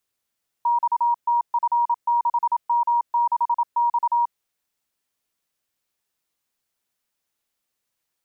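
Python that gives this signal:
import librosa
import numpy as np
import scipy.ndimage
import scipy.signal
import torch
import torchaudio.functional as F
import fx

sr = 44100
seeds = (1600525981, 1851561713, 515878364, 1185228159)

y = fx.morse(sr, text='XTF6M6X', wpm=27, hz=949.0, level_db=-16.5)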